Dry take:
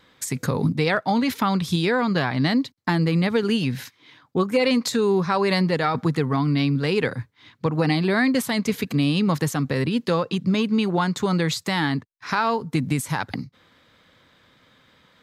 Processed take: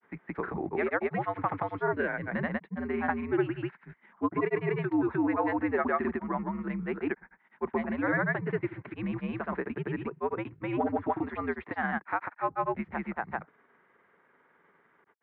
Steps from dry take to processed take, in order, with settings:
granular cloud, spray 208 ms, pitch spread up and down by 0 semitones
gain on a spectral selection 0:01.92–0:02.30, 740–1,500 Hz −9 dB
single-sideband voice off tune −89 Hz 310–2,200 Hz
level −3.5 dB

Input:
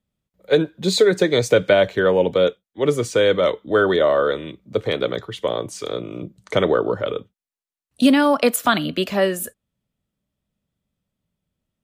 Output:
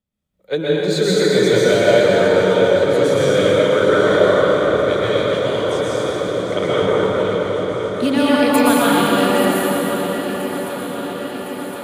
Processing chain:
delay that plays each chunk backwards 383 ms, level −11 dB
feedback echo with a long and a short gap by turns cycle 1,061 ms, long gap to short 3 to 1, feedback 71%, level −13 dB
dense smooth reverb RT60 4.4 s, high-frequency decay 0.6×, pre-delay 105 ms, DRR −8.5 dB
level −5.5 dB

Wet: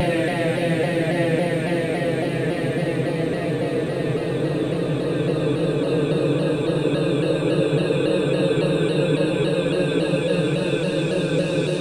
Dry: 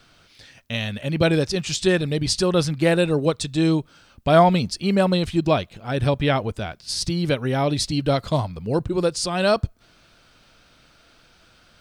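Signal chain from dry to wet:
slices reordered back to front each 91 ms, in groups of 3
extreme stretch with random phases 35×, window 0.50 s, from 0:02.92
pitch modulation by a square or saw wave saw down 3.6 Hz, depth 100 cents

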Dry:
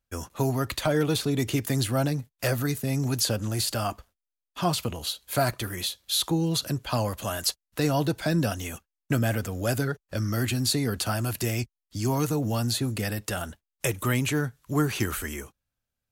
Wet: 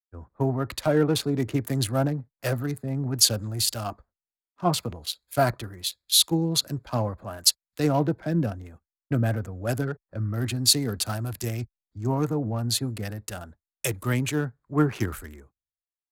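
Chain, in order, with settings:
adaptive Wiener filter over 15 samples
0:08.09–0:09.23: dynamic equaliser 1,100 Hz, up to −5 dB, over −42 dBFS, Q 0.71
multiband upward and downward expander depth 100%

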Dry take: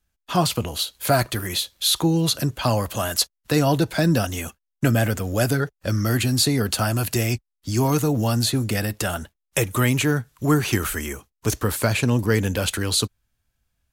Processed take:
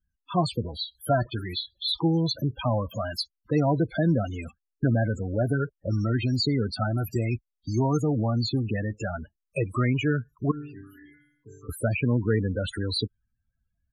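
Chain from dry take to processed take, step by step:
0:10.51–0:11.69: resonators tuned to a chord G2 sus4, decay 0.8 s
spectral peaks only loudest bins 16
level −3.5 dB

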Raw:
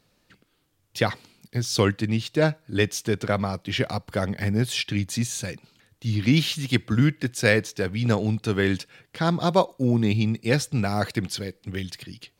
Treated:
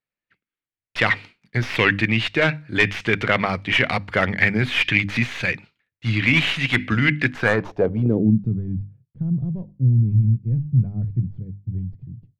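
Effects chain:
stylus tracing distortion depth 0.31 ms
first-order pre-emphasis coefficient 0.8
mains-hum notches 50/100/150/200/250/300 Hz
downward expander −51 dBFS
dynamic equaliser 2,700 Hz, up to +6 dB, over −50 dBFS, Q 1.5
in parallel at −2 dB: compressor whose output falls as the input rises −36 dBFS, ratio −0.5
on the sum: low-pass filter sweep 2,100 Hz → 130 Hz, 0:07.26–0:08.61
boost into a limiter +12 dB
level −1 dB

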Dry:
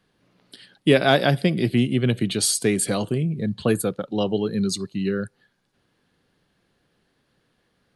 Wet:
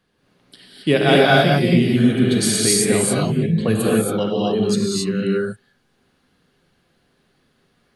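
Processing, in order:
reverb whose tail is shaped and stops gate 300 ms rising, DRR −5 dB
healed spectral selection 0:01.99–0:02.60, 530–3,200 Hz after
level −1 dB

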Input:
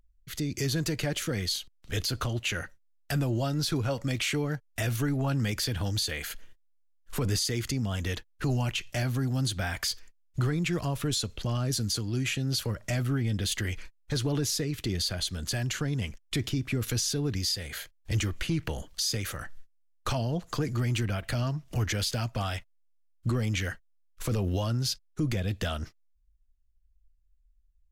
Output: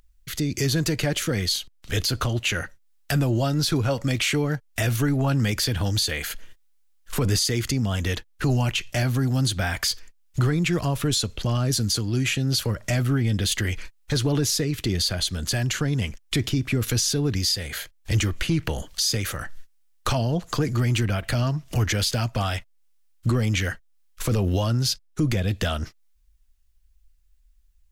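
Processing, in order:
one half of a high-frequency compander encoder only
level +6 dB

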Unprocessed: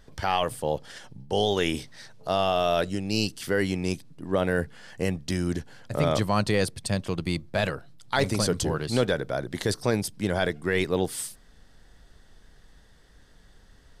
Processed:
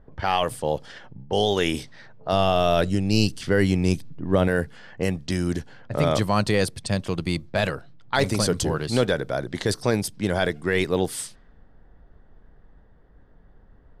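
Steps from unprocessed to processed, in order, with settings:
low-pass that shuts in the quiet parts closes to 910 Hz, open at −25 dBFS
0:02.32–0:04.48: low-shelf EQ 190 Hz +9.5 dB
level +2.5 dB

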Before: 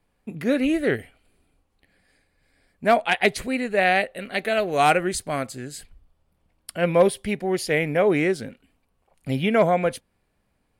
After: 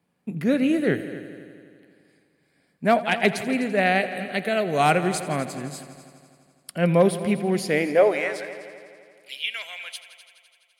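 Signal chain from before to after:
high-pass filter sweep 160 Hz → 3,000 Hz, 0:07.65–0:08.64
echo machine with several playback heads 84 ms, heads all three, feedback 57%, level −18 dB
level −2 dB

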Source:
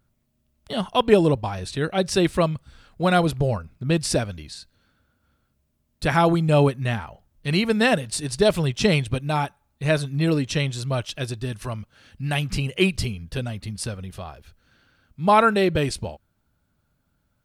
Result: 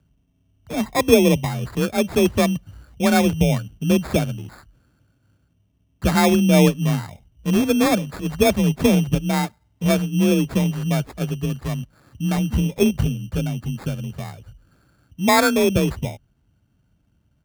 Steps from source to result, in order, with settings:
frequency shifter +33 Hz
spectral tilt −2.5 dB per octave
decimation without filtering 15×
level −1 dB

